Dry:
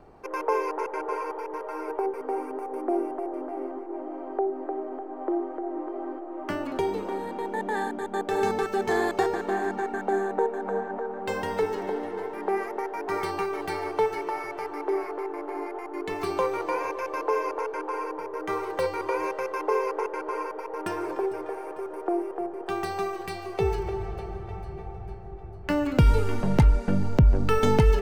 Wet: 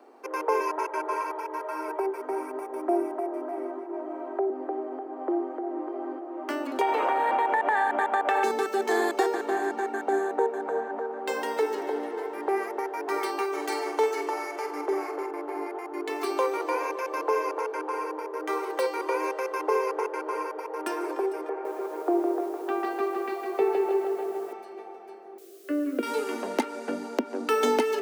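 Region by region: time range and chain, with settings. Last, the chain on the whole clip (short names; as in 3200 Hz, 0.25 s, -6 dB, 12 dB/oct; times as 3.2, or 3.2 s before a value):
0.6–4.5 HPF 400 Hz + comb 3.1 ms, depth 80%
6.81–8.44 band shelf 1300 Hz +15.5 dB 2.8 oct + compressor 10:1, threshold -20 dBFS
13.52–15.31 bell 6800 Hz +8.5 dB 0.45 oct + flutter echo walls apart 8.1 m, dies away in 0.34 s
21.49–24.53 LPF 2200 Hz + low shelf 360 Hz +4.5 dB + lo-fi delay 0.159 s, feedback 55%, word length 9-bit, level -5 dB
25.38–26.03 LPF 1300 Hz + requantised 10-bit, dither triangular + fixed phaser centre 360 Hz, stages 4
whole clip: steep high-pass 240 Hz 72 dB/oct; high shelf 6000 Hz +5.5 dB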